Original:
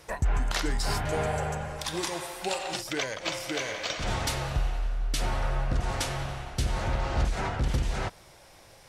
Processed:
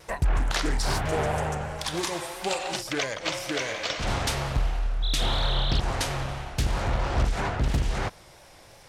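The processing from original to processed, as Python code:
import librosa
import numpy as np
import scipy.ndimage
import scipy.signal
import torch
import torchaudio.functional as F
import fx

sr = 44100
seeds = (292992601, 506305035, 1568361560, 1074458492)

y = fx.dmg_tone(x, sr, hz=3600.0, level_db=-32.0, at=(5.02, 5.79), fade=0.02)
y = fx.vibrato(y, sr, rate_hz=3.0, depth_cents=52.0)
y = fx.doppler_dist(y, sr, depth_ms=0.89)
y = y * 10.0 ** (2.5 / 20.0)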